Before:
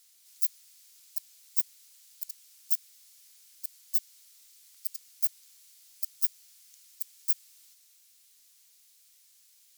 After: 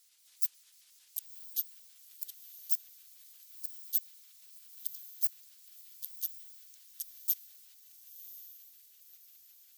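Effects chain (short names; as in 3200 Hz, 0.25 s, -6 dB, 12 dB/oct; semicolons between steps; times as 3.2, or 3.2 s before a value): trilling pitch shifter -6 st, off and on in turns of 90 ms; harmonic-percussive split harmonic -4 dB; diffused feedback echo 1.057 s, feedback 45%, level -13 dB; gain -2.5 dB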